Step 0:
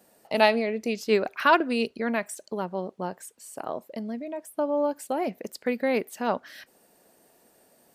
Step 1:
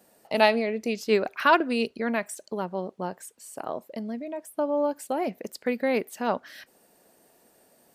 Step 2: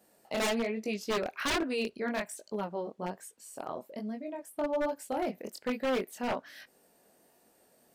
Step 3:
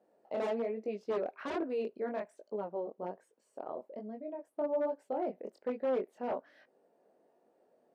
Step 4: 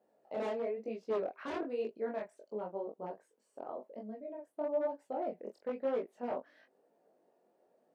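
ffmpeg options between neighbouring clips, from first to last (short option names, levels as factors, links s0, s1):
-af anull
-af "flanger=delay=18.5:depth=6:speed=1.2,aeval=exprs='0.075*(abs(mod(val(0)/0.075+3,4)-2)-1)':c=same,volume=0.841"
-af "bandpass=f=500:t=q:w=1.2:csg=0"
-af "flanger=delay=17.5:depth=6.6:speed=1,volume=1.12"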